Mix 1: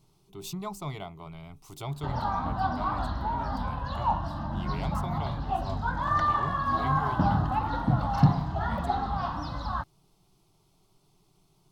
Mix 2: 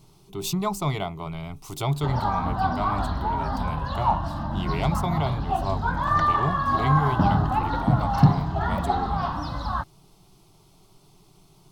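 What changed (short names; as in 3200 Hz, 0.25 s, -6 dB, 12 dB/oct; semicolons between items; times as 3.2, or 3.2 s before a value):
speech +10.0 dB; background +4.0 dB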